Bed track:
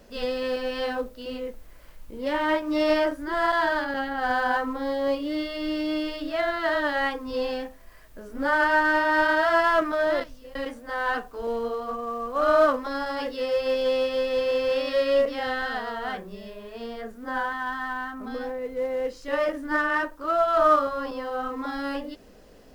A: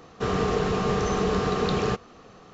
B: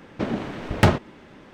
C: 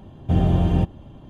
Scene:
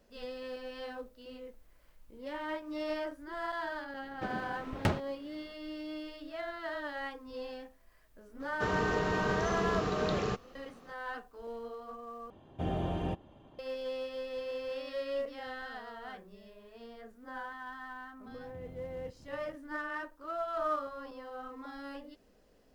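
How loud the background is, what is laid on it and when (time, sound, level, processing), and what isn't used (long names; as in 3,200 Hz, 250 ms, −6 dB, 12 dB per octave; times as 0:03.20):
bed track −14 dB
0:04.02: mix in B −13.5 dB
0:08.40: mix in A −8 dB
0:12.30: overwrite with C −7 dB + bass and treble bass −12 dB, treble −5 dB
0:18.26: mix in C −15 dB + downward compressor 5 to 1, threshold −33 dBFS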